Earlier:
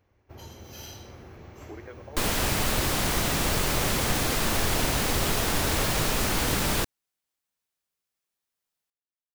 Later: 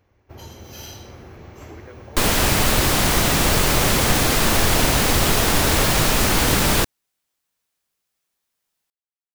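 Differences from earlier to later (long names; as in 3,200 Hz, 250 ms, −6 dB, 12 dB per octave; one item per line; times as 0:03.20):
first sound +5.0 dB
second sound +8.0 dB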